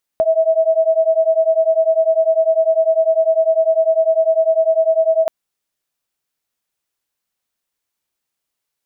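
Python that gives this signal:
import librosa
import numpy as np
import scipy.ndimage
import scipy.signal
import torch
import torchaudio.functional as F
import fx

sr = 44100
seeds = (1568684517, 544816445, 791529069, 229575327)

y = fx.two_tone_beats(sr, length_s=5.08, hz=642.0, beat_hz=10.0, level_db=-14.5)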